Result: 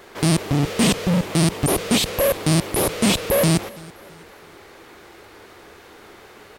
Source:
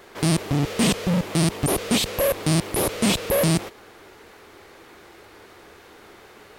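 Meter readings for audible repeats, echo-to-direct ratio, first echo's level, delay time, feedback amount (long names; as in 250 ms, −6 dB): 2, −22.5 dB, −23.0 dB, 329 ms, 40%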